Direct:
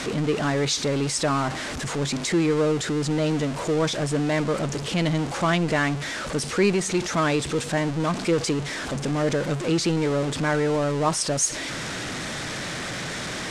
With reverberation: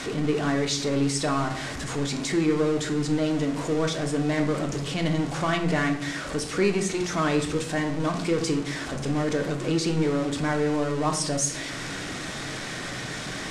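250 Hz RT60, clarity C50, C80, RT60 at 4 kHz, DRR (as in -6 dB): 1.2 s, 9.5 dB, 13.0 dB, 0.45 s, 4.0 dB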